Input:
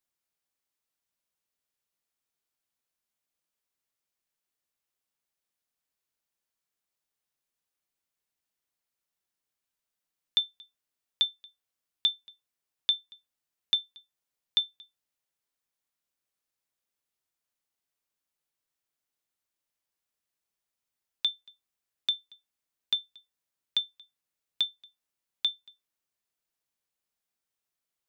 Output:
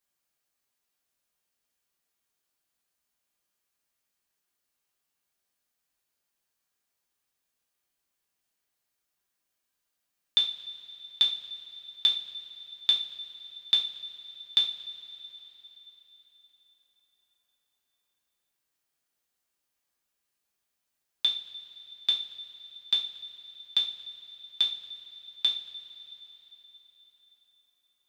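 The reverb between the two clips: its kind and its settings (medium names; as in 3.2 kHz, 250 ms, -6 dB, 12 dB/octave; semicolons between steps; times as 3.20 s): two-slope reverb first 0.36 s, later 4.3 s, from -21 dB, DRR -2.5 dB; trim +1 dB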